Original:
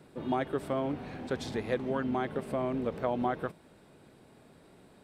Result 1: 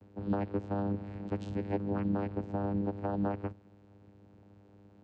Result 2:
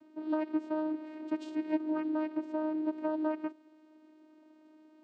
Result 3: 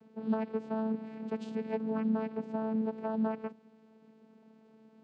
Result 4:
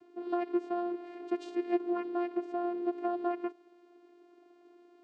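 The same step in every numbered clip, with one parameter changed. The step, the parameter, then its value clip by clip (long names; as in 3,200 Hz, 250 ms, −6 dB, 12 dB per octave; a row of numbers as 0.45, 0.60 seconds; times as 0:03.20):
channel vocoder, frequency: 100, 310, 220, 350 Hertz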